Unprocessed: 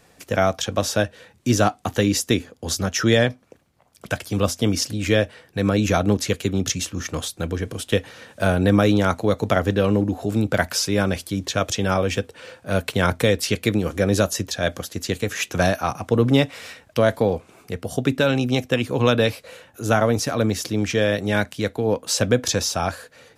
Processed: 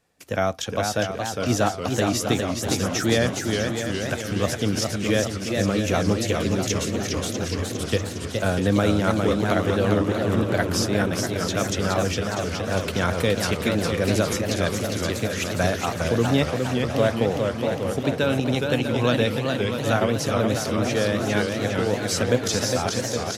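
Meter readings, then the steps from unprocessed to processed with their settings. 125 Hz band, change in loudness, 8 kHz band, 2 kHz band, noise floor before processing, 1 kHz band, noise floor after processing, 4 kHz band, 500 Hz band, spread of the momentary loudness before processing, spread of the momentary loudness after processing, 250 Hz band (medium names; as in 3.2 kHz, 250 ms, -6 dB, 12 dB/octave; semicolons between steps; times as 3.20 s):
-1.5 dB, -1.5 dB, -1.5 dB, -1.5 dB, -56 dBFS, -1.0 dB, -31 dBFS, -1.5 dB, -1.5 dB, 9 LU, 5 LU, -1.5 dB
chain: gate -48 dBFS, range -11 dB; feedback delay 646 ms, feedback 51%, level -9 dB; modulated delay 413 ms, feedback 64%, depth 174 cents, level -4.5 dB; trim -4 dB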